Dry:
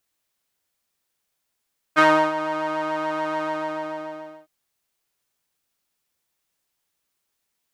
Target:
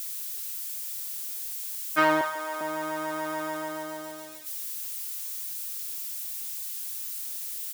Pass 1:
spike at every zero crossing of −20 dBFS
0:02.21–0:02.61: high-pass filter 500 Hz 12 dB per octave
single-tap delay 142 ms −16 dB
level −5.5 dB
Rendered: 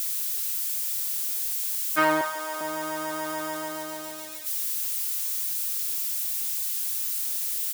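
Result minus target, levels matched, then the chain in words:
spike at every zero crossing: distortion +6 dB
spike at every zero crossing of −26.5 dBFS
0:02.21–0:02.61: high-pass filter 500 Hz 12 dB per octave
single-tap delay 142 ms −16 dB
level −5.5 dB

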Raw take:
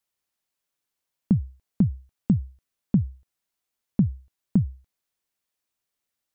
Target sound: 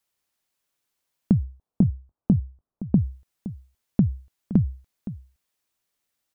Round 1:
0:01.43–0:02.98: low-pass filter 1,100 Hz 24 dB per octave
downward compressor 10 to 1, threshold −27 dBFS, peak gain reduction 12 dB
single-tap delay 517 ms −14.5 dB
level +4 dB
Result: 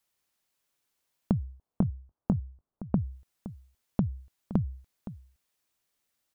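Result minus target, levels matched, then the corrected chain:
downward compressor: peak gain reduction +8.5 dB
0:01.43–0:02.98: low-pass filter 1,100 Hz 24 dB per octave
downward compressor 10 to 1, threshold −17.5 dBFS, peak gain reduction 3.5 dB
single-tap delay 517 ms −14.5 dB
level +4 dB

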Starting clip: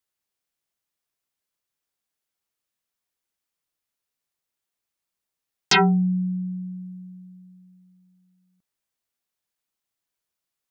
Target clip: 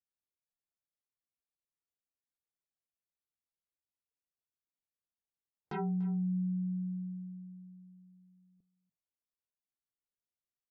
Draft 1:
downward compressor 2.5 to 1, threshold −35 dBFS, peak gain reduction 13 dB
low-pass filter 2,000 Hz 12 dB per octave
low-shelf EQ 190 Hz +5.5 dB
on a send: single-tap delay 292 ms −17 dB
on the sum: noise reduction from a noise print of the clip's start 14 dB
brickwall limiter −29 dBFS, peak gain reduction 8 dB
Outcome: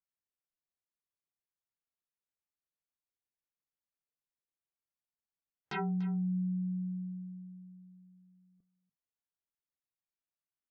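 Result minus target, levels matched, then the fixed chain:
2,000 Hz band +8.0 dB
downward compressor 2.5 to 1, threshold −35 dBFS, peak gain reduction 13 dB
low-pass filter 860 Hz 12 dB per octave
low-shelf EQ 190 Hz +5.5 dB
on a send: single-tap delay 292 ms −17 dB
on the sum: noise reduction from a noise print of the clip's start 14 dB
brickwall limiter −29 dBFS, peak gain reduction 6 dB

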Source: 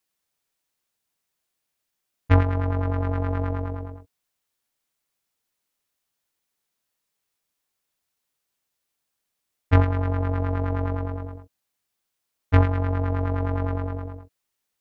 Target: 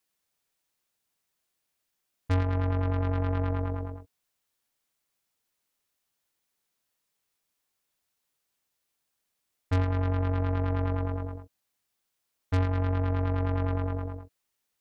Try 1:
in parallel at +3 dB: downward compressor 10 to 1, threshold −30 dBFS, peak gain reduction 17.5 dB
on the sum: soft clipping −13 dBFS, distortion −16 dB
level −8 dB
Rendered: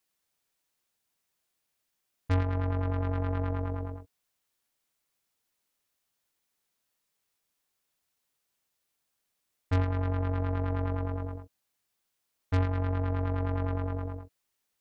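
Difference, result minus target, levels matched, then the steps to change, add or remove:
downward compressor: peak gain reduction +7.5 dB
change: downward compressor 10 to 1, threshold −21.5 dBFS, peak gain reduction 10 dB

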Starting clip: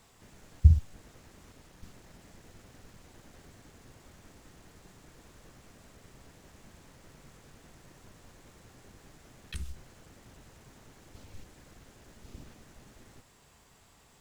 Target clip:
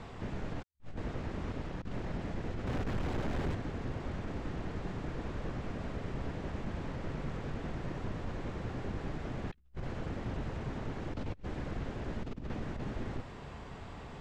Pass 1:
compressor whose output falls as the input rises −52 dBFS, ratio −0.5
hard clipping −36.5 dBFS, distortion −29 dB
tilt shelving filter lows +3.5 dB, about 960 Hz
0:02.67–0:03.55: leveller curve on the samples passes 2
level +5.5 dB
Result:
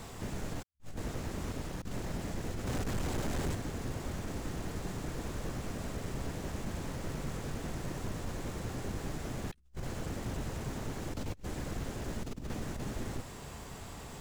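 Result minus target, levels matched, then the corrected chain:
4,000 Hz band +4.5 dB
compressor whose output falls as the input rises −52 dBFS, ratio −0.5
hard clipping −36.5 dBFS, distortion −29 dB
low-pass filter 3,100 Hz 12 dB per octave
tilt shelving filter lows +3.5 dB, about 960 Hz
0:02.67–0:03.55: leveller curve on the samples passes 2
level +5.5 dB

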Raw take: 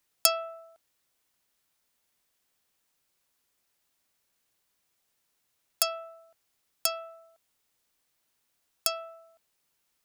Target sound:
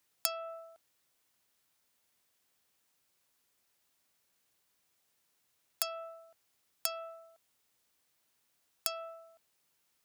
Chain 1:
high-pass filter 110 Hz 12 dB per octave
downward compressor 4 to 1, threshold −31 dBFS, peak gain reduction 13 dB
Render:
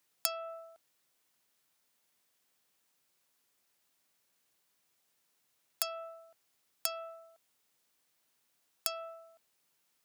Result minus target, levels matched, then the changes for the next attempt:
125 Hz band −2.5 dB
change: high-pass filter 50 Hz 12 dB per octave

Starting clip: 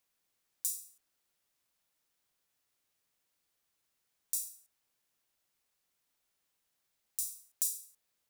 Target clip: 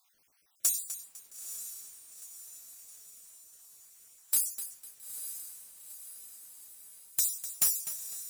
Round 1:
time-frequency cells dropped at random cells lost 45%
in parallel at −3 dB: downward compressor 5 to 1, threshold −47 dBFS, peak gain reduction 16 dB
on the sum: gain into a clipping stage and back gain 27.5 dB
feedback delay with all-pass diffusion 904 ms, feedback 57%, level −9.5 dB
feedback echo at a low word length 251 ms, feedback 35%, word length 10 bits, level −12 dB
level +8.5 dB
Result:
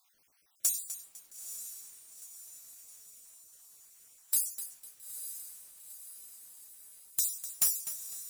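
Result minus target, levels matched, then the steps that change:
downward compressor: peak gain reduction +9 dB
change: downward compressor 5 to 1, threshold −36 dBFS, peak gain reduction 7 dB

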